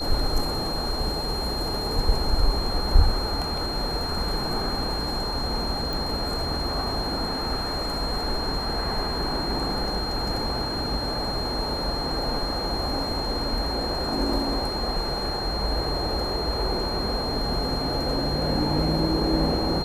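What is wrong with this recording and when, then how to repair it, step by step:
tone 4200 Hz -30 dBFS
5.93 pop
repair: de-click; notch 4200 Hz, Q 30

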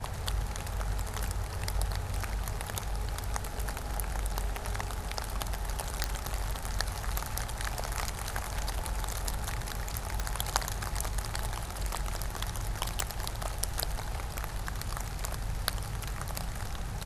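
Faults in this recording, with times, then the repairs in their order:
6.04 pop
10.2 pop
13 pop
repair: de-click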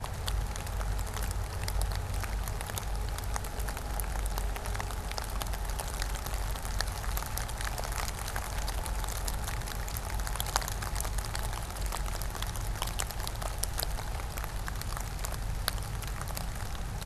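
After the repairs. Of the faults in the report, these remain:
none

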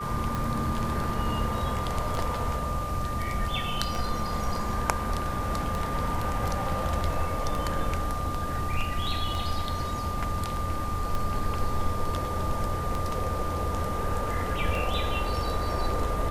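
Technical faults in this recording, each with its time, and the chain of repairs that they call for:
tick 33 1/3 rpm
tone 1200 Hz -33 dBFS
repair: de-click; notch 1200 Hz, Q 30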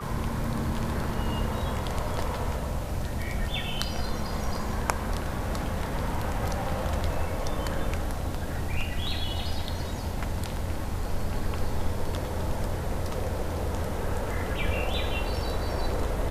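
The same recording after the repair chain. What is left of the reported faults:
none

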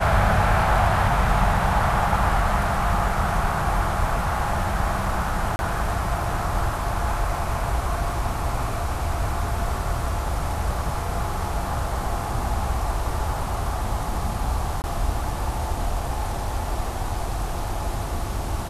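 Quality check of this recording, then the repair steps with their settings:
5.56–5.59 gap 31 ms
14.82–14.84 gap 19 ms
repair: interpolate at 5.56, 31 ms; interpolate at 14.82, 19 ms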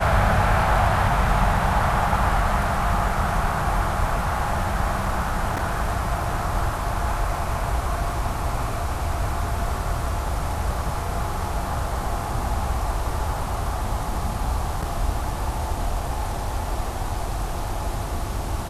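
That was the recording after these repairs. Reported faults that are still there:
none

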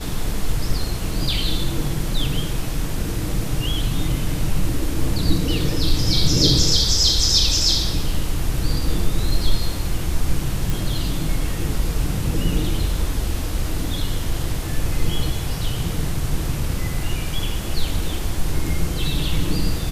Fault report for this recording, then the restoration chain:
10.7 pop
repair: de-click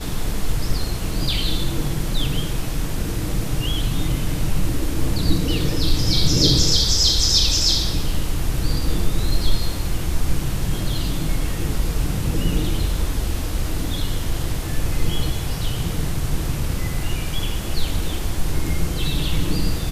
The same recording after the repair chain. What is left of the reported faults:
none

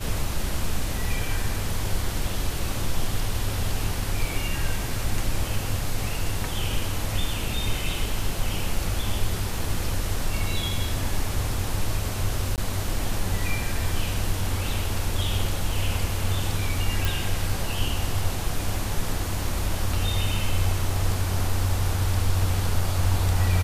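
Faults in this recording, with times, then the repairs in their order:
12.56–12.58 gap 18 ms
17.05 pop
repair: de-click; interpolate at 12.56, 18 ms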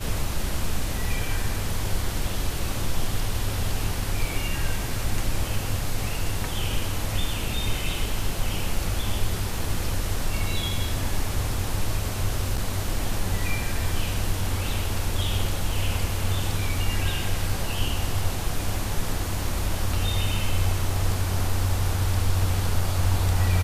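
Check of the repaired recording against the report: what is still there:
none

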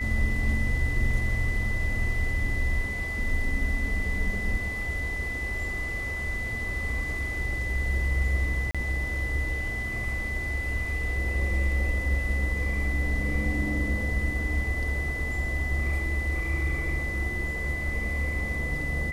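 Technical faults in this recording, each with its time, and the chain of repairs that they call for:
tone 2000 Hz -31 dBFS
8.71–8.75 gap 36 ms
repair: notch 2000 Hz, Q 30; interpolate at 8.71, 36 ms

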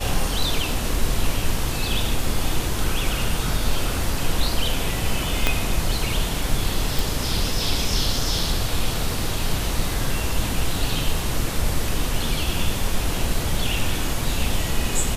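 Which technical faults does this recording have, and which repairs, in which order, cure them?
5.47 pop -3 dBFS
6.99 pop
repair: de-click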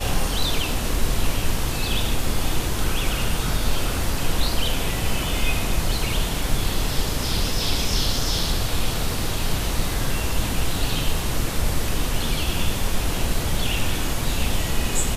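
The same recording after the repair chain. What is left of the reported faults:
5.47 pop

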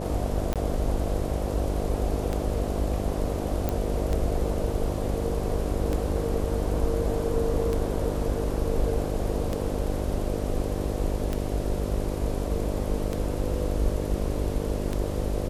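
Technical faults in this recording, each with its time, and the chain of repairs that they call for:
buzz 50 Hz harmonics 12 -31 dBFS
tick 33 1/3 rpm -15 dBFS
0.54–0.56 gap 17 ms
3.69 pop -13 dBFS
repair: de-click; de-hum 50 Hz, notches 12; interpolate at 0.54, 17 ms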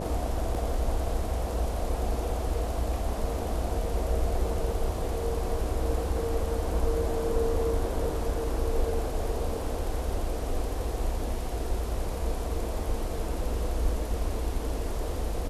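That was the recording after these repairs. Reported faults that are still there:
none

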